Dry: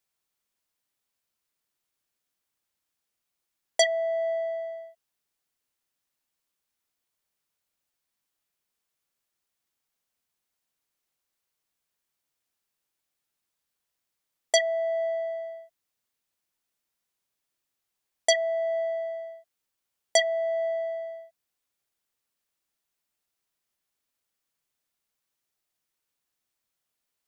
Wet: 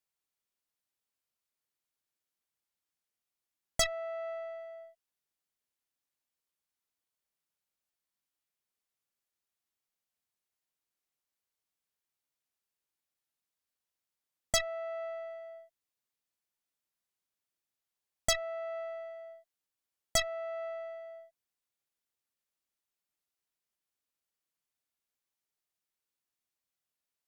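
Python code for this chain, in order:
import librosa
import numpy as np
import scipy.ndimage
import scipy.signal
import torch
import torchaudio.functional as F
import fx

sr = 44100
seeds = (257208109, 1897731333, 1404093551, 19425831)

y = fx.dynamic_eq(x, sr, hz=690.0, q=2.4, threshold_db=-37.0, ratio=4.0, max_db=-4)
y = fx.cheby_harmonics(y, sr, harmonics=(4,), levels_db=(-7,), full_scale_db=-9.0)
y = y * 10.0 ** (-7.5 / 20.0)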